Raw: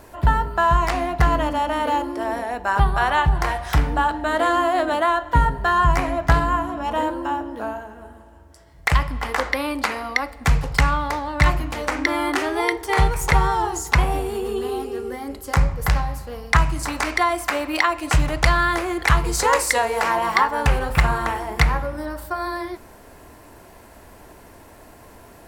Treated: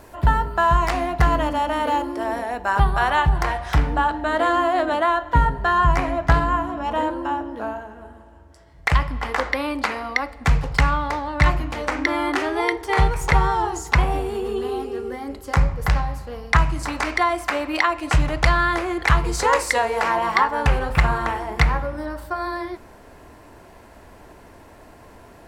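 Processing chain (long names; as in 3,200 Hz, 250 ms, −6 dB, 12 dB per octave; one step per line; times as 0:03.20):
high-shelf EQ 8,400 Hz −2 dB, from 0:03.43 −12 dB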